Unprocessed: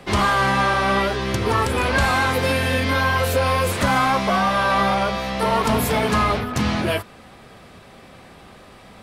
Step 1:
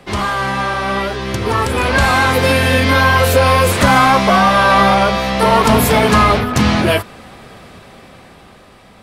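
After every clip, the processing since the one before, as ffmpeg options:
ffmpeg -i in.wav -af "dynaudnorm=framelen=410:gausssize=9:maxgain=11.5dB" out.wav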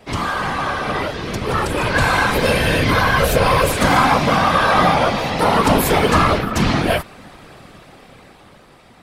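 ffmpeg -i in.wav -af "afftfilt=real='hypot(re,im)*cos(2*PI*random(0))':imag='hypot(re,im)*sin(2*PI*random(1))':win_size=512:overlap=0.75,volume=2.5dB" out.wav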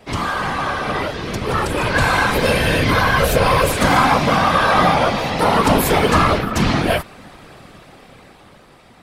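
ffmpeg -i in.wav -af anull out.wav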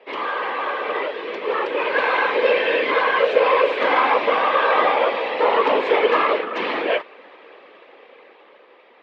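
ffmpeg -i in.wav -af "highpass=frequency=390:width=0.5412,highpass=frequency=390:width=1.3066,equalizer=frequency=480:width_type=q:width=4:gain=5,equalizer=frequency=720:width_type=q:width=4:gain=-7,equalizer=frequency=1400:width_type=q:width=4:gain=-7,lowpass=frequency=3000:width=0.5412,lowpass=frequency=3000:width=1.3066" out.wav

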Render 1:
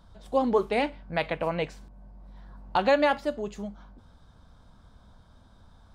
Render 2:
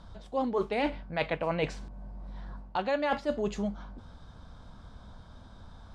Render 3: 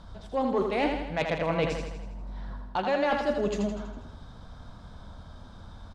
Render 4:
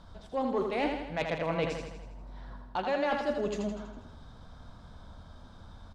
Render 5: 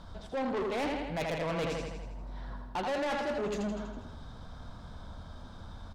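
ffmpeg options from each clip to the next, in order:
ffmpeg -i in.wav -af "lowpass=7400,areverse,acompressor=threshold=-31dB:ratio=16,areverse,volume=5.5dB" out.wav
ffmpeg -i in.wav -af "asoftclip=type=tanh:threshold=-19dB,aecho=1:1:81|162|243|324|405|486|567:0.531|0.297|0.166|0.0932|0.0522|0.0292|0.0164,volume=2.5dB" out.wav
ffmpeg -i in.wav -af "bandreject=frequency=50:width_type=h:width=6,bandreject=frequency=100:width_type=h:width=6,bandreject=frequency=150:width_type=h:width=6,bandreject=frequency=200:width_type=h:width=6,volume=-3.5dB" out.wav
ffmpeg -i in.wav -af "asoftclip=type=tanh:threshold=-33.5dB,volume=4dB" out.wav

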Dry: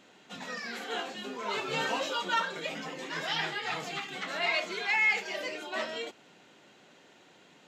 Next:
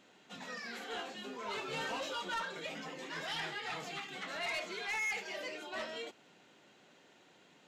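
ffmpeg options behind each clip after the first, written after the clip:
ffmpeg -i in.wav -af "asoftclip=type=tanh:threshold=-27.5dB,volume=-5dB" out.wav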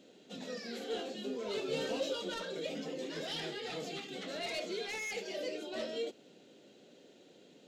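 ffmpeg -i in.wav -af "equalizer=frequency=250:width_type=o:width=1:gain=6,equalizer=frequency=500:width_type=o:width=1:gain=10,equalizer=frequency=1000:width_type=o:width=1:gain=-11,equalizer=frequency=2000:width_type=o:width=1:gain=-5,equalizer=frequency=4000:width_type=o:width=1:gain=4" out.wav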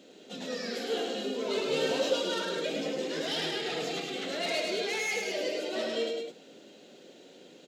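ffmpeg -i in.wav -filter_complex "[0:a]highpass=frequency=210:poles=1,asplit=2[link_01][link_02];[link_02]aecho=0:1:105|207:0.631|0.447[link_03];[link_01][link_03]amix=inputs=2:normalize=0,volume=6dB" out.wav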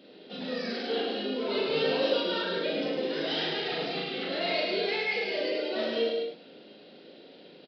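ffmpeg -i in.wav -filter_complex "[0:a]asplit=2[link_01][link_02];[link_02]adelay=39,volume=-2dB[link_03];[link_01][link_03]amix=inputs=2:normalize=0,aresample=11025,aresample=44100" out.wav

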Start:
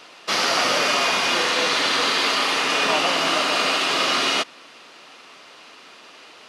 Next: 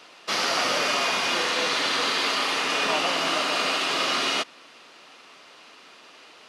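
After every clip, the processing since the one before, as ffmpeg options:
ffmpeg -i in.wav -af "highpass=69,volume=-4dB" out.wav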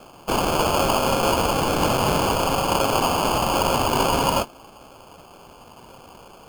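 ffmpeg -i in.wav -af "equalizer=frequency=3000:width=1.4:gain=6.5,flanger=delay=7.8:depth=1.3:regen=-59:speed=1:shape=sinusoidal,acrusher=samples=23:mix=1:aa=0.000001,volume=5dB" out.wav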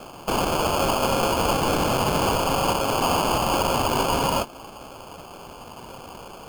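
ffmpeg -i in.wav -af "alimiter=limit=-19.5dB:level=0:latency=1:release=163,volume=5dB" out.wav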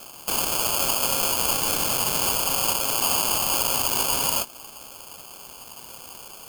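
ffmpeg -i in.wav -af "crystalizer=i=7.5:c=0,volume=-10.5dB" out.wav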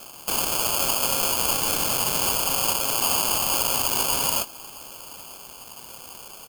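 ffmpeg -i in.wav -af "aecho=1:1:936:0.0708" out.wav

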